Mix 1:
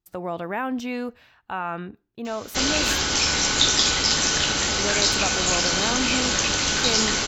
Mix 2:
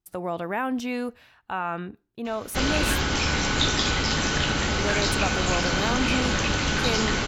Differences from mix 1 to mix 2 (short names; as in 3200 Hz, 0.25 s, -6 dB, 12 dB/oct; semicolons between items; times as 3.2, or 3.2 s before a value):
background: add tone controls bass +6 dB, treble -13 dB; master: add bell 10000 Hz +14 dB 0.31 oct